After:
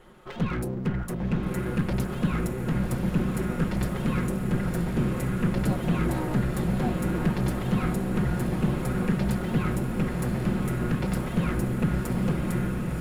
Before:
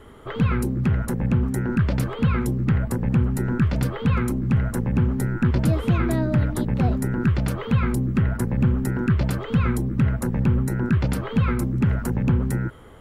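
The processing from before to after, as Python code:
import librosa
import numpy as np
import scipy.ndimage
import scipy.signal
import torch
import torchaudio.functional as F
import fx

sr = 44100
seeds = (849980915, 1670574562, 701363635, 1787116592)

y = fx.lower_of_two(x, sr, delay_ms=5.5)
y = fx.echo_diffused(y, sr, ms=1090, feedback_pct=67, wet_db=-3.5)
y = F.gain(torch.from_numpy(y), -5.0).numpy()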